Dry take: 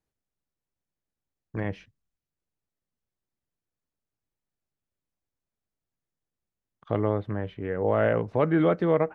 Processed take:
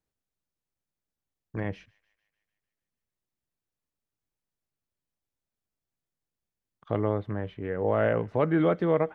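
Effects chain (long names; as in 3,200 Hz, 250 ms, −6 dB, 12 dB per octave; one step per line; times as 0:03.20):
on a send: delay with a high-pass on its return 150 ms, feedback 60%, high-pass 2,100 Hz, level −22 dB
on the sum: level −1.5 dB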